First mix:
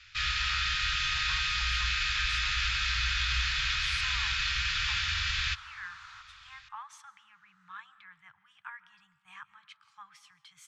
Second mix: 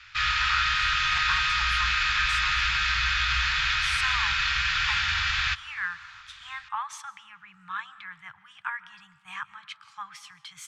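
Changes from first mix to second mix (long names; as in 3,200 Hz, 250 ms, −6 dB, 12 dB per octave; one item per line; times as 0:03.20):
speech +11.5 dB
first sound: add parametric band 690 Hz +14.5 dB 2.7 octaves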